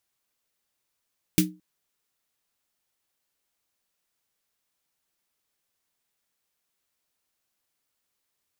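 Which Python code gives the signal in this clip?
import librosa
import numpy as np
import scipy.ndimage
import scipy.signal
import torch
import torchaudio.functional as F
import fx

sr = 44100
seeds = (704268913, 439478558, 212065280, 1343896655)

y = fx.drum_snare(sr, seeds[0], length_s=0.22, hz=180.0, second_hz=310.0, noise_db=-2.5, noise_from_hz=1800.0, decay_s=0.29, noise_decay_s=0.14)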